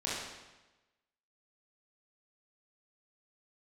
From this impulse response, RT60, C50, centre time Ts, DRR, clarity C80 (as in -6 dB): 1.1 s, -1.5 dB, 85 ms, -8.0 dB, 2.5 dB